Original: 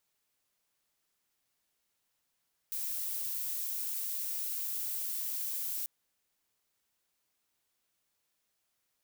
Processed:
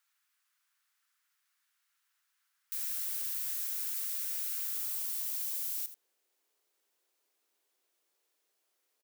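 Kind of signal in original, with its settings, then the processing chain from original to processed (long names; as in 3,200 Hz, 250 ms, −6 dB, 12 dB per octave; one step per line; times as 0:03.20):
noise violet, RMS −36 dBFS 3.14 s
low-shelf EQ 180 Hz −4 dB
high-pass filter sweep 1,400 Hz → 380 Hz, 0:04.65–0:05.68
single-tap delay 82 ms −13 dB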